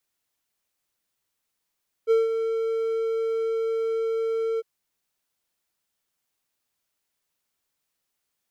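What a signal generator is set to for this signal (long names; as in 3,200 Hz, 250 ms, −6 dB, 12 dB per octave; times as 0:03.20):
note with an ADSR envelope triangle 451 Hz, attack 39 ms, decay 170 ms, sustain −8 dB, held 2.52 s, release 32 ms −13 dBFS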